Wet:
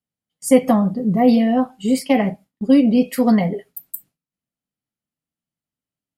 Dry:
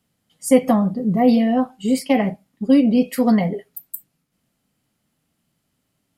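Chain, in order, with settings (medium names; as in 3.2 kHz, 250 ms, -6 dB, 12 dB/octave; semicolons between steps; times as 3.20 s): gate with hold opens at -41 dBFS; trim +1 dB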